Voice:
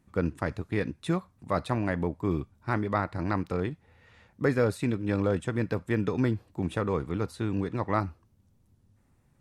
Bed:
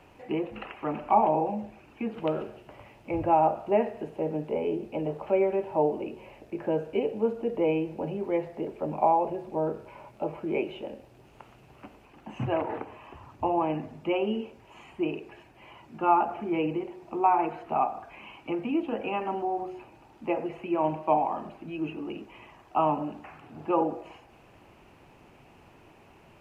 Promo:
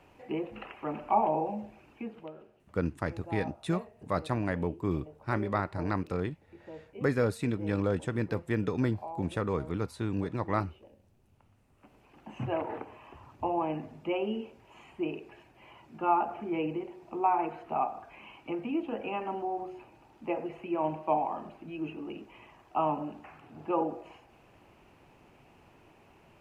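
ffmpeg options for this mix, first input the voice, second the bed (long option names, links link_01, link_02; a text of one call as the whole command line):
ffmpeg -i stem1.wav -i stem2.wav -filter_complex "[0:a]adelay=2600,volume=-2.5dB[link_01];[1:a]volume=10.5dB,afade=type=out:start_time=1.89:duration=0.42:silence=0.188365,afade=type=in:start_time=11.75:duration=0.4:silence=0.188365[link_02];[link_01][link_02]amix=inputs=2:normalize=0" out.wav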